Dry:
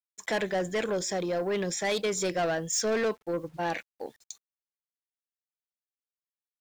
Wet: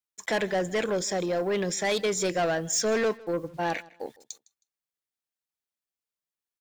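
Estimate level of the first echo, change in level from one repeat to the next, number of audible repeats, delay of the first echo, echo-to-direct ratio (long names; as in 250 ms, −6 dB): −22.5 dB, −12.0 dB, 2, 158 ms, −22.0 dB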